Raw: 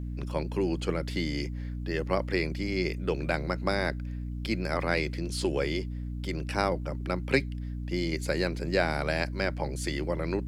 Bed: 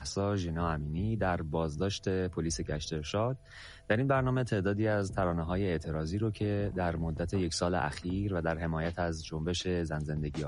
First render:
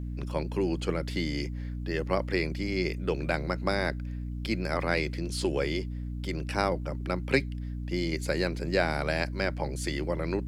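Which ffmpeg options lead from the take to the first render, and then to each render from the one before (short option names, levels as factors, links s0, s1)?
-af anull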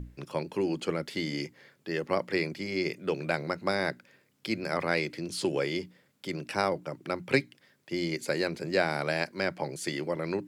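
-af "bandreject=f=60:t=h:w=6,bandreject=f=120:t=h:w=6,bandreject=f=180:t=h:w=6,bandreject=f=240:t=h:w=6,bandreject=f=300:t=h:w=6"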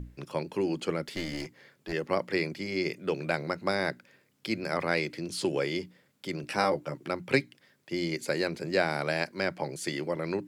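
-filter_complex "[0:a]asettb=1/sr,asplit=3[s0][s1][s2];[s0]atrim=end=1.074[s3];[s1]atrim=start=1.07:end=1.93,asetpts=PTS-STARTPTS,afade=t=in:d=0.004:c=qsin,afade=t=out:st=0.856:d=0.004:c=qsin,aeval=exprs='clip(val(0),-1,0.015)':c=same[s4];[s2]atrim=start=1.926[s5];[s3][s4]acrossfade=d=0.004:c1=hsin:c2=qsin[s6];[s6][s5]acrossfade=d=0.004:c1=qsin:c2=hsin,asettb=1/sr,asplit=3[s7][s8][s9];[s7]atrim=end=6.424[s10];[s8]atrim=start=6.42:end=7.08,asetpts=PTS-STARTPTS,afade=t=in:d=0.004:c=qsin,afade=t=out:st=0.656:d=0.004:c=qsin,asplit=2[s11][s12];[s12]adelay=14,volume=0.631[s13];[s11][s13]amix=inputs=2:normalize=0,atrim=end_sample=29106[s14];[s9]atrim=start=7.076[s15];[s10][s14]acrossfade=d=0.004:c1=hsin:c2=qsin[s16];[s16][s15]acrossfade=d=0.004:c1=qsin:c2=hsin"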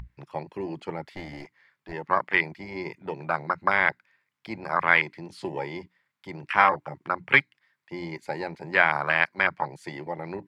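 -af "afwtdn=0.0282,equalizer=f=250:t=o:w=1:g=-5,equalizer=f=500:t=o:w=1:g=-6,equalizer=f=1000:t=o:w=1:g=12,equalizer=f=2000:t=o:w=1:g=11,equalizer=f=4000:t=o:w=1:g=4"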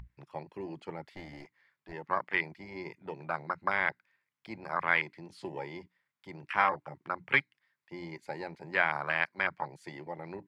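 -af "volume=0.422"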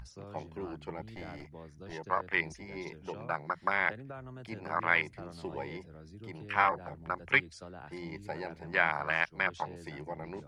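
-filter_complex "[1:a]volume=0.141[s0];[0:a][s0]amix=inputs=2:normalize=0"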